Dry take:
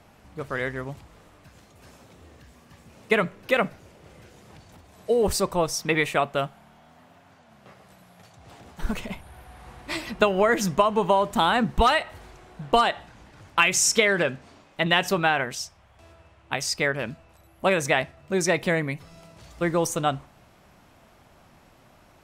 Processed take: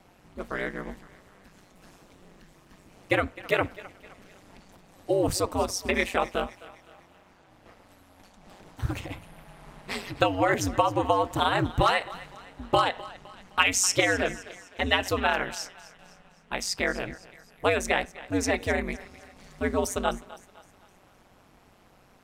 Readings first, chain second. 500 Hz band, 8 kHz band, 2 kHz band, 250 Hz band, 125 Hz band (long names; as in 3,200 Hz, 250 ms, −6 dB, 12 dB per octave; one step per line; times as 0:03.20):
−3.5 dB, −3.0 dB, −3.0 dB, −2.5 dB, −2.0 dB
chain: feedback echo with a high-pass in the loop 257 ms, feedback 47%, high-pass 420 Hz, level −17.5 dB
ring modulation 94 Hz